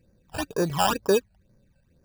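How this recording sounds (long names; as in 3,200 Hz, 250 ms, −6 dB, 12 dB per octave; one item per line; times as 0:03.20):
aliases and images of a low sample rate 2,100 Hz, jitter 0%
phaser sweep stages 12, 2.1 Hz, lowest notch 340–3,200 Hz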